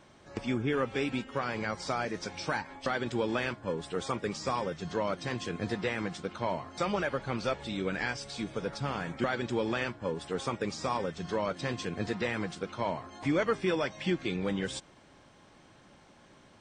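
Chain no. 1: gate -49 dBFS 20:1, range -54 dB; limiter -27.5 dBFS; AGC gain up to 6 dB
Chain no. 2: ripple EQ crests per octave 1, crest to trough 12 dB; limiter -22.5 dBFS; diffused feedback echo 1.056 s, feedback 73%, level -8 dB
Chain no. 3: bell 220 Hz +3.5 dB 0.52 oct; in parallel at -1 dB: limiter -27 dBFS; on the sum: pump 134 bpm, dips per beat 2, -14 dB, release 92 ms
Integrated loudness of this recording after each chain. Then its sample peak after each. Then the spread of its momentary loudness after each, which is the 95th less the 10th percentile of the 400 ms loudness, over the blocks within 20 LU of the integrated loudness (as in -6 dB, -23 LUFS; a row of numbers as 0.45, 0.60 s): -32.5, -33.0, -30.0 LUFS; -21.5, -18.5, -15.0 dBFS; 3, 6, 4 LU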